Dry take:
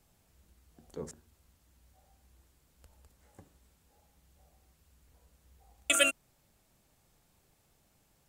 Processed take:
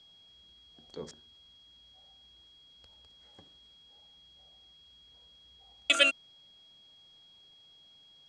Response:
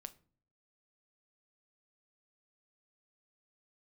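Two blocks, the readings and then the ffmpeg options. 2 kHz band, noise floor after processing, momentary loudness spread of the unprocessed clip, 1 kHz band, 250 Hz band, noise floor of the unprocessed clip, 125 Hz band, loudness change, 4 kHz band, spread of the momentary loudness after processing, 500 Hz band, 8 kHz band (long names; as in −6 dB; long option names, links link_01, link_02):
+3.0 dB, −59 dBFS, 22 LU, +0.5 dB, −1.5 dB, −71 dBFS, can't be measured, +3.0 dB, +5.0 dB, 22 LU, −0.5 dB, −8.0 dB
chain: -af "aeval=exprs='val(0)+0.000794*sin(2*PI*3300*n/s)':channel_layout=same,lowpass=frequency=4500:width_type=q:width=3.3,lowshelf=frequency=120:gain=-9.5"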